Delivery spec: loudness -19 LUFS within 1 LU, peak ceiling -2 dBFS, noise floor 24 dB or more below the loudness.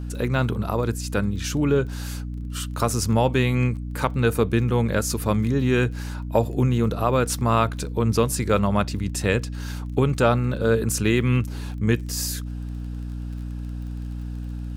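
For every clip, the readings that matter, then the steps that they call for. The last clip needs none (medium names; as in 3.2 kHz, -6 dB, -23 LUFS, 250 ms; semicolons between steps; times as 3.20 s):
tick rate 22 per s; hum 60 Hz; highest harmonic 300 Hz; hum level -29 dBFS; loudness -24.0 LUFS; peak level -5.5 dBFS; loudness target -19.0 LUFS
-> de-click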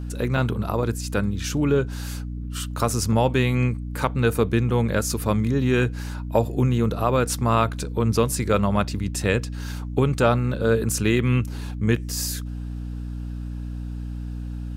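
tick rate 0.27 per s; hum 60 Hz; highest harmonic 300 Hz; hum level -29 dBFS
-> de-hum 60 Hz, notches 5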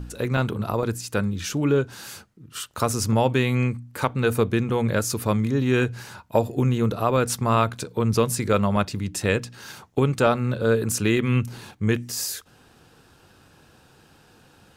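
hum not found; loudness -23.5 LUFS; peak level -5.5 dBFS; loudness target -19.0 LUFS
-> trim +4.5 dB; peak limiter -2 dBFS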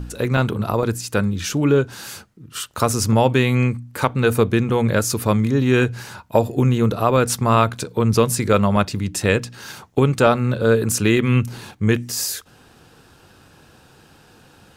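loudness -19.0 LUFS; peak level -2.0 dBFS; noise floor -51 dBFS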